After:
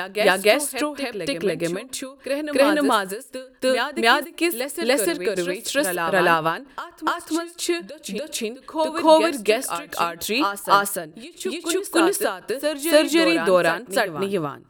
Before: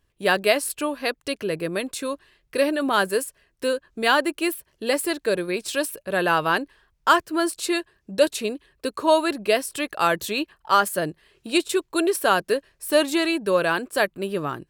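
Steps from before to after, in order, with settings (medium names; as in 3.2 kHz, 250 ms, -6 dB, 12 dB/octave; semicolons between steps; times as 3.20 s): reverse echo 290 ms -7.5 dB; on a send at -23 dB: reverberation RT60 0.50 s, pre-delay 3 ms; on the sum: endings held to a fixed fall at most 150 dB/s; trim +3.5 dB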